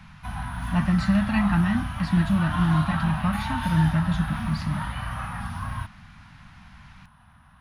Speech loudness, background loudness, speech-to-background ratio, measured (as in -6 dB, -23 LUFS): -25.0 LUFS, -31.0 LUFS, 6.0 dB